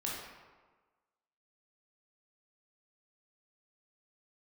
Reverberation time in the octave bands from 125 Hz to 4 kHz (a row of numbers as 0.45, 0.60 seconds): 1.2, 1.3, 1.3, 1.4, 1.1, 0.80 seconds